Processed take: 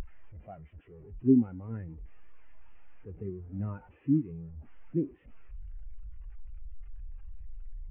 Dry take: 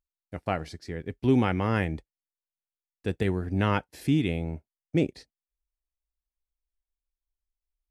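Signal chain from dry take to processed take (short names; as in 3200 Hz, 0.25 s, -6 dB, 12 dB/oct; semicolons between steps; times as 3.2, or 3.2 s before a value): delta modulation 16 kbps, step -23 dBFS; spectral expander 2.5:1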